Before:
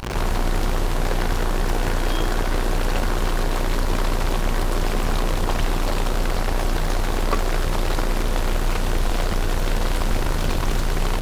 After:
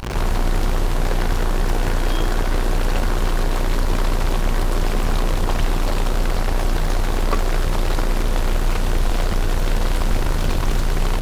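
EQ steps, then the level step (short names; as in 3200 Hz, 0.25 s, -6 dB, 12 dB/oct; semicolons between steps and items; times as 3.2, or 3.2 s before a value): low shelf 170 Hz +3 dB; 0.0 dB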